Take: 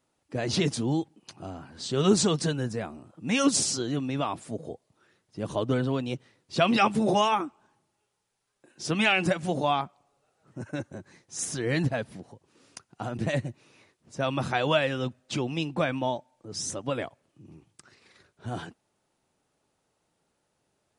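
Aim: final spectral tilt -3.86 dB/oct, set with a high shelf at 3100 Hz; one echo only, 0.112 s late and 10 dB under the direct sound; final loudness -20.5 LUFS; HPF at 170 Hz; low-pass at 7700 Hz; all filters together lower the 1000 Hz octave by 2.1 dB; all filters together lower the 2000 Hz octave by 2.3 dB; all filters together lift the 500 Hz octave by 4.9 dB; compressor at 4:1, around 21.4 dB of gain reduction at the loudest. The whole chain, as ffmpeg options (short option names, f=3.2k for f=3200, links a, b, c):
-af "highpass=170,lowpass=7.7k,equalizer=f=500:t=o:g=8,equalizer=f=1k:t=o:g=-6,equalizer=f=2k:t=o:g=-3.5,highshelf=f=3.1k:g=3.5,acompressor=threshold=-41dB:ratio=4,aecho=1:1:112:0.316,volume=22dB"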